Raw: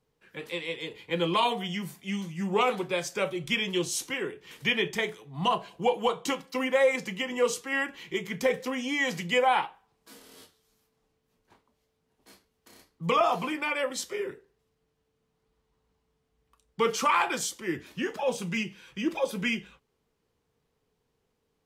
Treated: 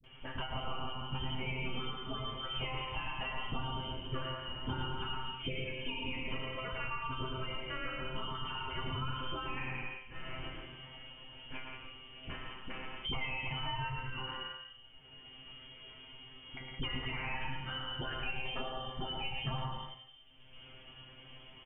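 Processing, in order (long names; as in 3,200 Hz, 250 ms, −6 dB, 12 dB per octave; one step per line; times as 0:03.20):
double-tracking delay 37 ms −10.5 dB
on a send at −7 dB: convolution reverb RT60 0.65 s, pre-delay 78 ms
on the sum: brickwall limiter −22.5 dBFS, peak gain reduction 11.5 dB
parametric band 63 Hz −14.5 dB 1.9 octaves
loudspeakers that aren't time-aligned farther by 38 metres −5 dB, 58 metres −8 dB
voice inversion scrambler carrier 3,300 Hz
spectral tilt −3.5 dB per octave
tuned comb filter 130 Hz, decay 0.19 s, harmonics all, mix 100%
all-pass dispersion highs, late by 40 ms, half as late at 380 Hz
multiband upward and downward compressor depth 100%
level +2 dB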